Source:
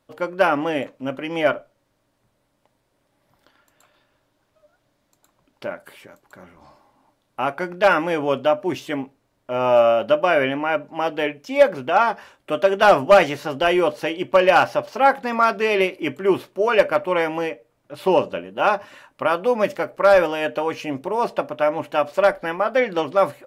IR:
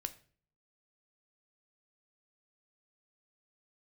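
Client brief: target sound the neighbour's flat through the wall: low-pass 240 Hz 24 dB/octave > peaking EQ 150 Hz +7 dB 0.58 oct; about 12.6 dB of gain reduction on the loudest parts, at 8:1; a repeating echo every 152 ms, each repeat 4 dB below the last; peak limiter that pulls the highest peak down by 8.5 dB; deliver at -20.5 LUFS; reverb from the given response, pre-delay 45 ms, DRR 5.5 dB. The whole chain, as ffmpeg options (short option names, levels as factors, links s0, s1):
-filter_complex "[0:a]acompressor=threshold=0.0891:ratio=8,alimiter=limit=0.126:level=0:latency=1,aecho=1:1:152|304|456|608|760|912|1064|1216|1368:0.631|0.398|0.25|0.158|0.0994|0.0626|0.0394|0.0249|0.0157,asplit=2[s0][s1];[1:a]atrim=start_sample=2205,adelay=45[s2];[s1][s2]afir=irnorm=-1:irlink=0,volume=0.631[s3];[s0][s3]amix=inputs=2:normalize=0,lowpass=f=240:w=0.5412,lowpass=f=240:w=1.3066,equalizer=f=150:t=o:w=0.58:g=7,volume=7.08"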